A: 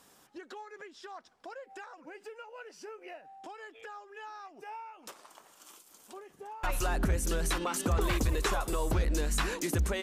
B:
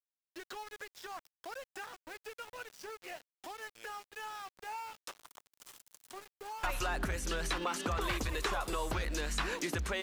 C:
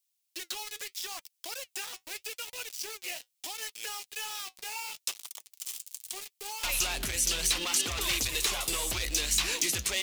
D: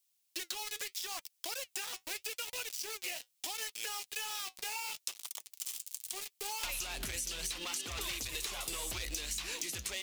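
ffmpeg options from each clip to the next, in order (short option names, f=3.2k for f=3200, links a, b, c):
-filter_complex "[0:a]tiltshelf=f=640:g=-4,aeval=exprs='val(0)*gte(abs(val(0)),0.00501)':c=same,acrossover=split=900|5200[a][b][c];[a]acompressor=threshold=-34dB:ratio=4[d];[b]acompressor=threshold=-35dB:ratio=4[e];[c]acompressor=threshold=-51dB:ratio=4[f];[d][e][f]amix=inputs=3:normalize=0"
-af "volume=33dB,asoftclip=hard,volume=-33dB,flanger=delay=2.4:depth=6.2:regen=-63:speed=0.77:shape=sinusoidal,aexciter=amount=6.3:drive=2.8:freq=2.2k,volume=3.5dB"
-af "acompressor=threshold=-38dB:ratio=10,volume=2.5dB"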